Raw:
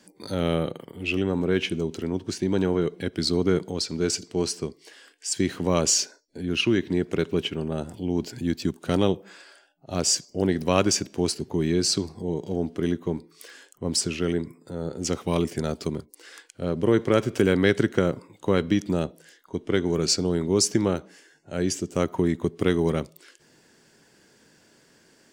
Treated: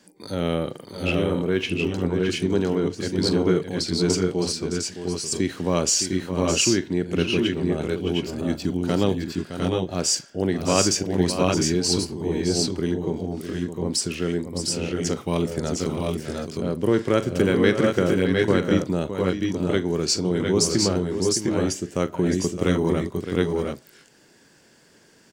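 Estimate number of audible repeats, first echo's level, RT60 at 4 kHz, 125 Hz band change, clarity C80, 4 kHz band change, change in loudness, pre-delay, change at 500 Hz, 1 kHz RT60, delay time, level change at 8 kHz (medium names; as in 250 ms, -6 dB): 3, -14.0 dB, no reverb, +2.5 dB, no reverb, +2.5 dB, +2.0 dB, no reverb, +2.5 dB, no reverb, 40 ms, +2.5 dB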